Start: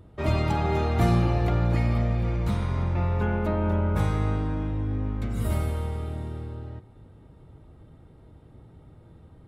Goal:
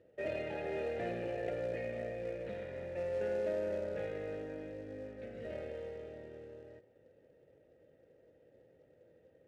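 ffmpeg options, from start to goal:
-filter_complex "[0:a]aeval=exprs='(tanh(7.94*val(0)+0.15)-tanh(0.15))/7.94':c=same,asplit=3[a][b][c];[a]bandpass=f=530:t=q:w=8,volume=0dB[d];[b]bandpass=f=1.84k:t=q:w=8,volume=-6dB[e];[c]bandpass=f=2.48k:t=q:w=8,volume=-9dB[f];[d][e][f]amix=inputs=3:normalize=0,acrusher=bits=5:mode=log:mix=0:aa=0.000001,adynamicsmooth=sensitivity=6.5:basefreq=4.6k,volume=4.5dB"

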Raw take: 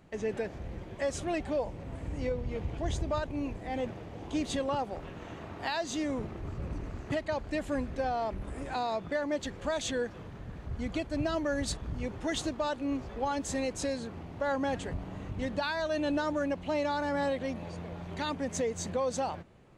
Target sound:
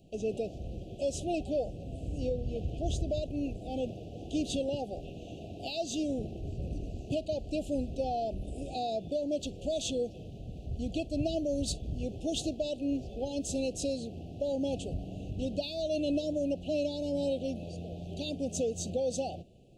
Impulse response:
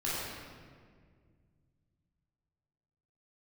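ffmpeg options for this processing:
-filter_complex "[0:a]asuperstop=centerf=1400:order=20:qfactor=0.77,asplit=2[a][b];[1:a]atrim=start_sample=2205,atrim=end_sample=3087[c];[b][c]afir=irnorm=-1:irlink=0,volume=-25dB[d];[a][d]amix=inputs=2:normalize=0"

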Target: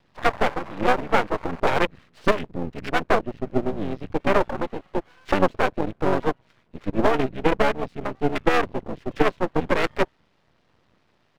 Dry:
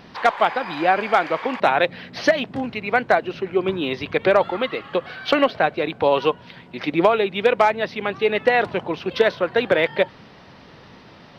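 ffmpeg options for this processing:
-filter_complex "[0:a]afwtdn=0.0708,asplit=2[a][b];[b]asetrate=29433,aresample=44100,atempo=1.49831,volume=-1dB[c];[a][c]amix=inputs=2:normalize=0,aeval=exprs='max(val(0),0)':c=same,volume=-1dB"

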